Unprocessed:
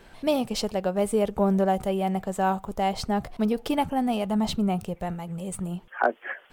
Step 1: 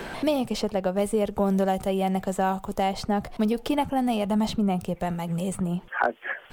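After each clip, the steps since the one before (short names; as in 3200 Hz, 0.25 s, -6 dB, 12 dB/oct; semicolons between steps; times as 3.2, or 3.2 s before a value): three-band squash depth 70%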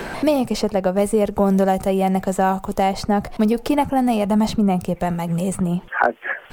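dynamic EQ 3300 Hz, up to -7 dB, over -54 dBFS, Q 3.5; gain +6.5 dB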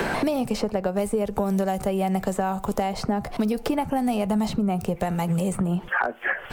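compressor 3:1, threshold -23 dBFS, peak gain reduction 9 dB; reverb RT60 0.45 s, pre-delay 3 ms, DRR 18 dB; three-band squash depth 70%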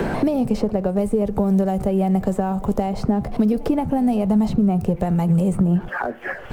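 G.711 law mismatch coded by mu; tilt shelf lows +7 dB, about 730 Hz; pre-echo 0.17 s -21.5 dB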